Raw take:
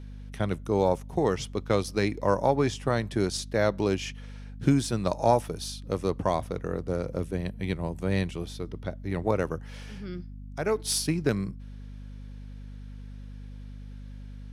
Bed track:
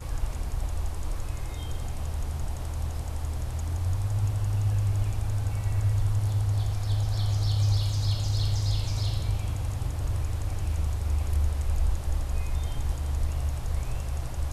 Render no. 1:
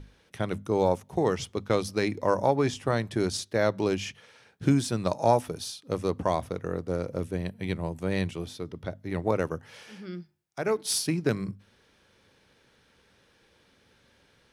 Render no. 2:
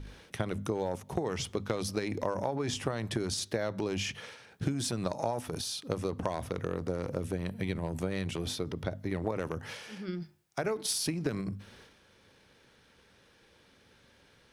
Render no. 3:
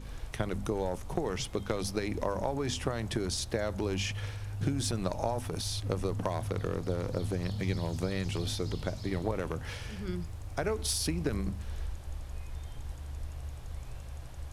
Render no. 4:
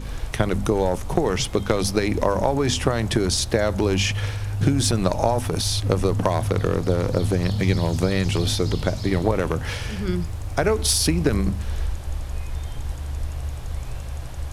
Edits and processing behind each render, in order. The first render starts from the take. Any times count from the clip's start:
mains-hum notches 50/100/150/200/250 Hz
transient designer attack +5 dB, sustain +9 dB; downward compressor 6 to 1, threshold −29 dBFS, peak gain reduction 15 dB
mix in bed track −12 dB
level +11.5 dB

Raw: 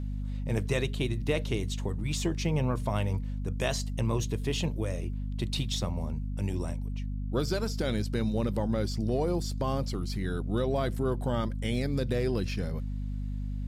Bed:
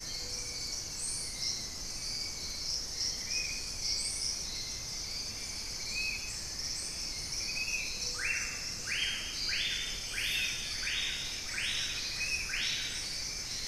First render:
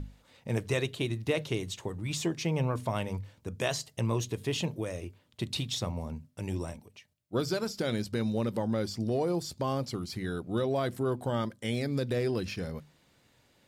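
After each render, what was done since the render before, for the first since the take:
mains-hum notches 50/100/150/200/250 Hz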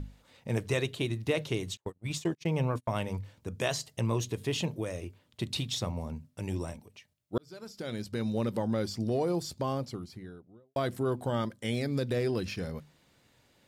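0:01.77–0:02.95: noise gate −35 dBFS, range −38 dB
0:07.38–0:08.42: fade in
0:09.45–0:10.76: fade out and dull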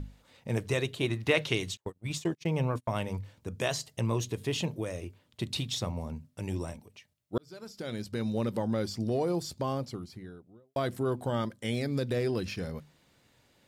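0:01.02–0:01.70: parametric band 1,000 Hz → 3,800 Hz +8.5 dB 2.7 octaves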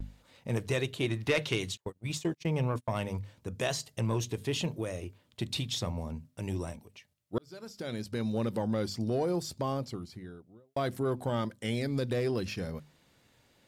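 soft clipping −19 dBFS, distortion −21 dB
pitch vibrato 0.66 Hz 28 cents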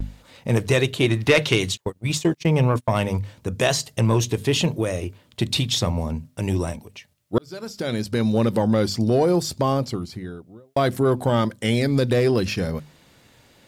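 level +11.5 dB

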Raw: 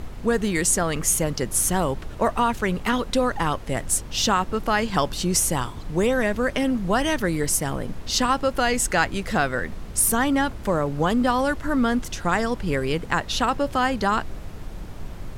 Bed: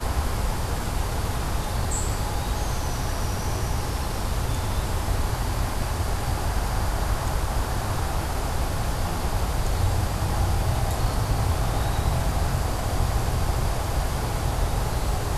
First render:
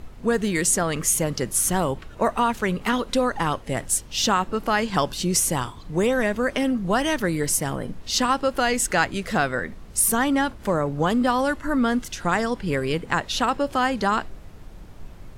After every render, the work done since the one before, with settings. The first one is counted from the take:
noise reduction from a noise print 7 dB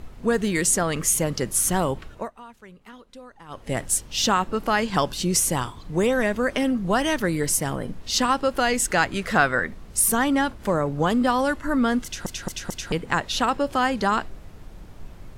0:02.07–0:03.71: duck −22 dB, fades 0.23 s
0:09.11–0:09.67: parametric band 1,400 Hz +5.5 dB 1.5 octaves
0:12.04: stutter in place 0.22 s, 4 plays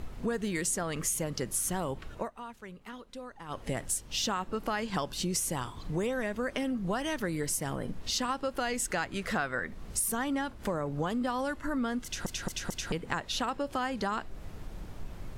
downward compressor 3 to 1, threshold −32 dBFS, peak gain reduction 14 dB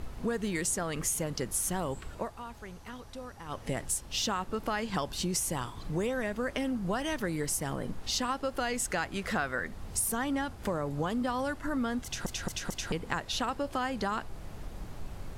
mix in bed −25.5 dB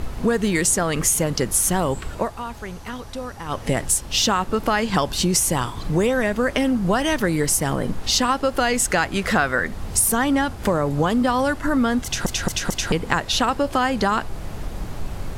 level +12 dB

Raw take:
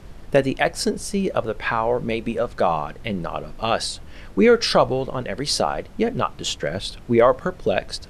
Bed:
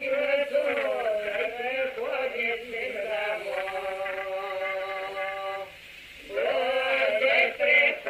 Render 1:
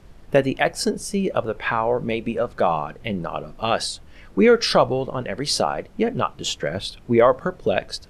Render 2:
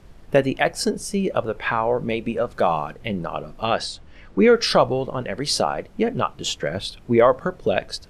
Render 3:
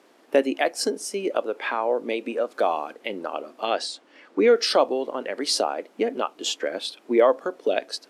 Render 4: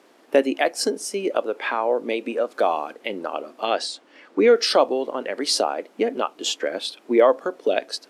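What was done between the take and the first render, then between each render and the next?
noise reduction from a noise print 6 dB
0:02.51–0:02.93: high-shelf EQ 4,900 Hz +5.5 dB; 0:03.66–0:04.56: high-frequency loss of the air 58 metres
Chebyshev high-pass filter 270 Hz, order 4; dynamic equaliser 1,300 Hz, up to −5 dB, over −30 dBFS, Q 0.73
level +2 dB

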